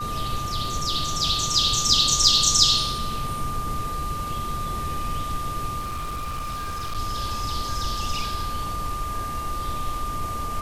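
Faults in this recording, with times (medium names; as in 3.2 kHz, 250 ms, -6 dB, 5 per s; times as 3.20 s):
whine 1.2 kHz -29 dBFS
5.79–6.97 s: clipped -26 dBFS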